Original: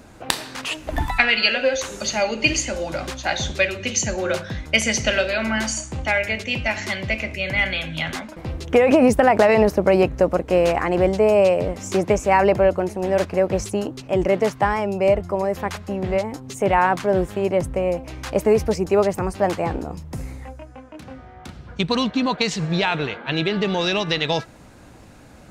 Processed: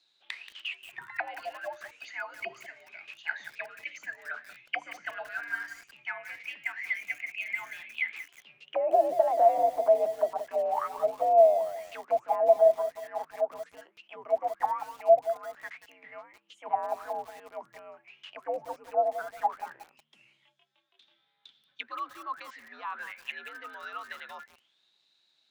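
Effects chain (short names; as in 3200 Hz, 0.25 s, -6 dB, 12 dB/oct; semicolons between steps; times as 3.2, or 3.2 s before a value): frequency shift +74 Hz; auto-wah 670–4100 Hz, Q 13, down, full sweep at -13 dBFS; lo-fi delay 0.18 s, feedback 35%, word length 7-bit, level -11 dB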